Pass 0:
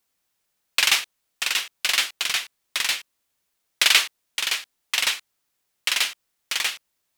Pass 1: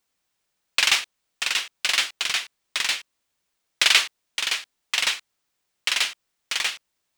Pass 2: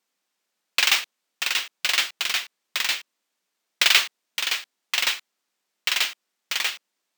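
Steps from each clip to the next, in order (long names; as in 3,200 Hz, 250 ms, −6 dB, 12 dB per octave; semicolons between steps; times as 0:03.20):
parametric band 13,000 Hz −11 dB 0.48 octaves
linear-phase brick-wall high-pass 170 Hz; bad sample-rate conversion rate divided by 2×, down filtered, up hold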